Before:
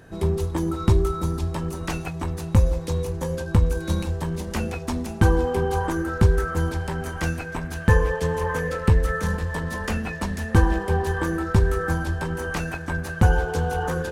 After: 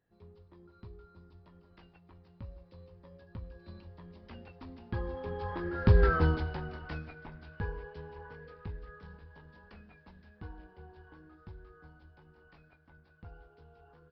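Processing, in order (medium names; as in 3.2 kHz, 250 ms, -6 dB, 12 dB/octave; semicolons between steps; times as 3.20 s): Doppler pass-by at 6.12 s, 19 m/s, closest 2.8 m; resampled via 11.025 kHz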